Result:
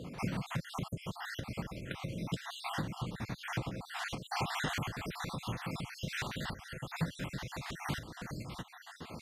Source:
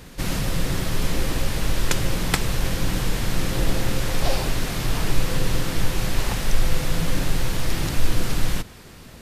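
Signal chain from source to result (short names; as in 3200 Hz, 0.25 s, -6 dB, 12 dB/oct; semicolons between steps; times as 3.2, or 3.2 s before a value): random spectral dropouts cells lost 56%; compressor 10:1, threshold -28 dBFS, peak gain reduction 19 dB; LPF 1000 Hz 6 dB/oct, from 4.31 s 1900 Hz; dynamic EQ 410 Hz, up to -8 dB, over -53 dBFS, Q 0.86; HPF 140 Hz 12 dB/oct; gain +5 dB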